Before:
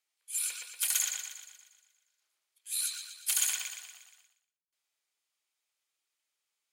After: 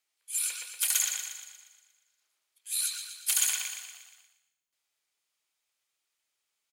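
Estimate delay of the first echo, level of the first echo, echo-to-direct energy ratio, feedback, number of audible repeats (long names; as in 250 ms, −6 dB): 154 ms, −18.0 dB, −16.0 dB, repeats not evenly spaced, 3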